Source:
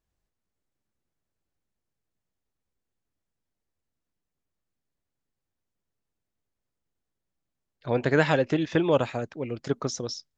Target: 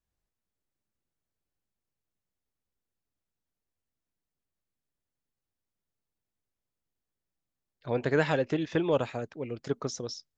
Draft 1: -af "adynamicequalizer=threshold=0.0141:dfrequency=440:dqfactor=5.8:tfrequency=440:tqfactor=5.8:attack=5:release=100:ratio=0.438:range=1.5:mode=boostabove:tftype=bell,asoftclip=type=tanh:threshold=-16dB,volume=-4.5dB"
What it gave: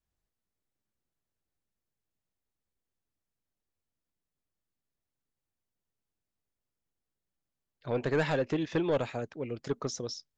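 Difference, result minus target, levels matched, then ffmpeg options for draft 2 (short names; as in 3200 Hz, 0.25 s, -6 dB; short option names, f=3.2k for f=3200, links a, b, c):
soft clip: distortion +18 dB
-af "adynamicequalizer=threshold=0.0141:dfrequency=440:dqfactor=5.8:tfrequency=440:tqfactor=5.8:attack=5:release=100:ratio=0.438:range=1.5:mode=boostabove:tftype=bell,asoftclip=type=tanh:threshold=-4dB,volume=-4.5dB"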